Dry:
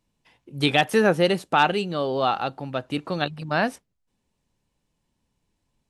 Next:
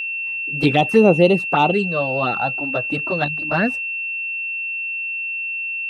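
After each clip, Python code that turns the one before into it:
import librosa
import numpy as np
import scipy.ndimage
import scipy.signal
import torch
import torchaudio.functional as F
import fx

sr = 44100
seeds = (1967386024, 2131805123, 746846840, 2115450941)

y = fx.env_flanger(x, sr, rest_ms=7.7, full_db=-16.0)
y = fx.high_shelf(y, sr, hz=2100.0, db=-11.5)
y = y + 10.0 ** (-31.0 / 20.0) * np.sin(2.0 * np.pi * 2700.0 * np.arange(len(y)) / sr)
y = F.gain(torch.from_numpy(y), 8.0).numpy()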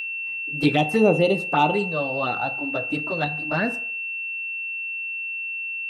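y = fx.high_shelf(x, sr, hz=5500.0, db=6.0)
y = fx.rev_fdn(y, sr, rt60_s=0.56, lf_ratio=0.75, hf_ratio=0.5, size_ms=20.0, drr_db=7.5)
y = F.gain(torch.from_numpy(y), -5.0).numpy()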